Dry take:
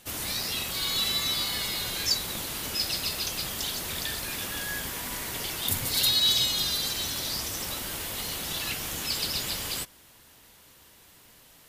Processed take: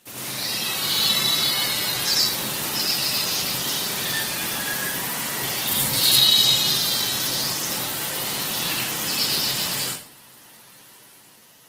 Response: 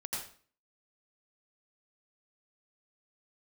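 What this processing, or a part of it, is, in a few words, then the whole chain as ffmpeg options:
far-field microphone of a smart speaker: -filter_complex "[1:a]atrim=start_sample=2205[link_01];[0:a][link_01]afir=irnorm=-1:irlink=0,highpass=frequency=120:width=0.5412,highpass=frequency=120:width=1.3066,dynaudnorm=framelen=150:gausssize=9:maxgain=3dB,volume=3dB" -ar 48000 -c:a libopus -b:a 16k

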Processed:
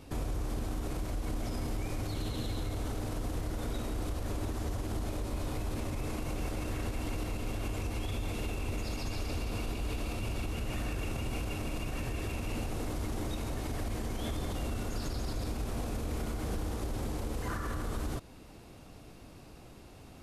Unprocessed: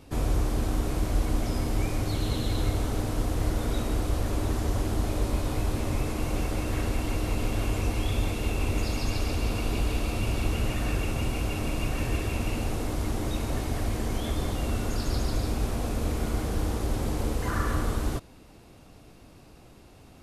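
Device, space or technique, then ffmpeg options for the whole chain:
stacked limiters: -af "alimiter=limit=-18.5dB:level=0:latency=1:release=396,alimiter=limit=-24dB:level=0:latency=1:release=115,alimiter=level_in=3dB:limit=-24dB:level=0:latency=1:release=28,volume=-3dB"

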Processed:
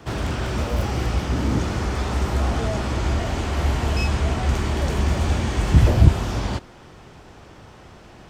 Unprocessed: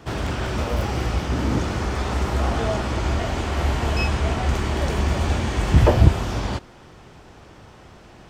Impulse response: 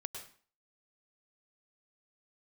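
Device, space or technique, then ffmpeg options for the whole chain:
one-band saturation: -filter_complex "[0:a]acrossover=split=300|4800[link_01][link_02][link_03];[link_02]asoftclip=type=tanh:threshold=-26dB[link_04];[link_01][link_04][link_03]amix=inputs=3:normalize=0,volume=1dB"

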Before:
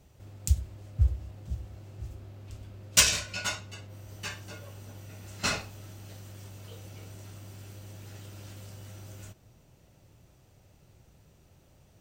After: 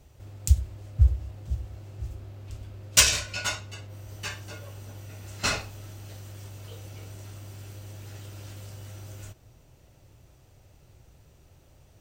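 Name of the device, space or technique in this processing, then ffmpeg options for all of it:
low shelf boost with a cut just above: -af "lowshelf=frequency=74:gain=5,equalizer=frequency=190:width_type=o:width=0.57:gain=-6,volume=2.5dB"

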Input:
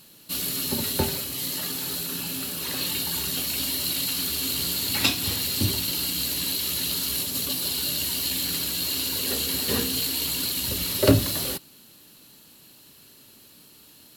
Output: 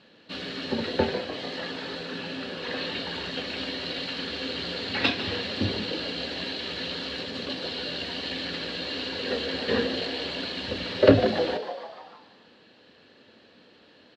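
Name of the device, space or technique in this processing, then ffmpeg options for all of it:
frequency-shifting delay pedal into a guitar cabinet: -filter_complex "[0:a]asplit=8[link_01][link_02][link_03][link_04][link_05][link_06][link_07][link_08];[link_02]adelay=149,afreqshift=110,volume=-11.5dB[link_09];[link_03]adelay=298,afreqshift=220,volume=-15.8dB[link_10];[link_04]adelay=447,afreqshift=330,volume=-20.1dB[link_11];[link_05]adelay=596,afreqshift=440,volume=-24.4dB[link_12];[link_06]adelay=745,afreqshift=550,volume=-28.7dB[link_13];[link_07]adelay=894,afreqshift=660,volume=-33dB[link_14];[link_08]adelay=1043,afreqshift=770,volume=-37.3dB[link_15];[link_01][link_09][link_10][link_11][link_12][link_13][link_14][link_15]amix=inputs=8:normalize=0,highpass=90,equalizer=frequency=140:width_type=q:width=4:gain=-8,equalizer=frequency=230:width_type=q:width=4:gain=3,equalizer=frequency=500:width_type=q:width=4:gain=10,equalizer=frequency=720:width_type=q:width=4:gain=4,equalizer=frequency=1700:width_type=q:width=4:gain=8,lowpass=frequency=3800:width=0.5412,lowpass=frequency=3800:width=1.3066,volume=-1dB"

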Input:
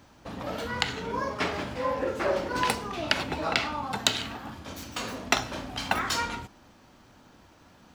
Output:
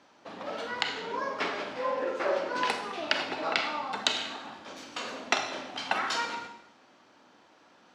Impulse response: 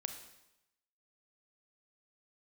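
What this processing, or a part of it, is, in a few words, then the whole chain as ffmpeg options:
supermarket ceiling speaker: -filter_complex "[0:a]highpass=320,lowpass=5700[link_01];[1:a]atrim=start_sample=2205[link_02];[link_01][link_02]afir=irnorm=-1:irlink=0"

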